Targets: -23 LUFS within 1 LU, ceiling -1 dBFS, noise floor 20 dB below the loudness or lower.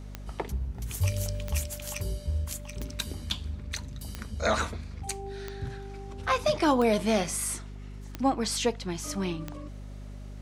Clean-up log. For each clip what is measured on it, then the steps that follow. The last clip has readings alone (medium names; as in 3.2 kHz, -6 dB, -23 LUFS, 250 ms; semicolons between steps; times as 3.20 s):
clicks found 8; hum 50 Hz; highest harmonic 250 Hz; hum level -38 dBFS; loudness -30.5 LUFS; peak level -11.5 dBFS; loudness target -23.0 LUFS
-> de-click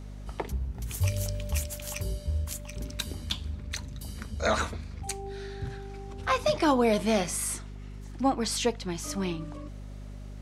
clicks found 0; hum 50 Hz; highest harmonic 250 Hz; hum level -38 dBFS
-> hum notches 50/100/150/200/250 Hz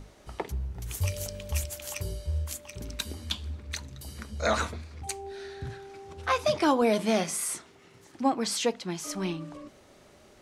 hum not found; loudness -31.0 LUFS; peak level -11.0 dBFS; loudness target -23.0 LUFS
-> trim +8 dB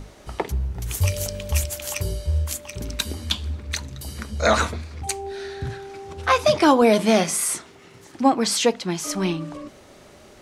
loudness -23.0 LUFS; peak level -3.0 dBFS; noise floor -48 dBFS